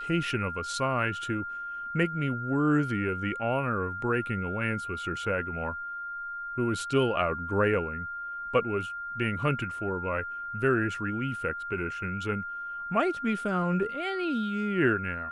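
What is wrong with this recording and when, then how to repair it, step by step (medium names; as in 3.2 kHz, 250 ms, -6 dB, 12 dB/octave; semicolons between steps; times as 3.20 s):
whine 1.4 kHz -34 dBFS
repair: band-stop 1.4 kHz, Q 30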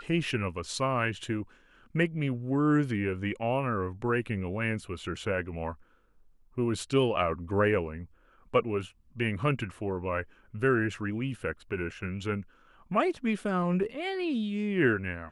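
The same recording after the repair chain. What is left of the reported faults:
nothing left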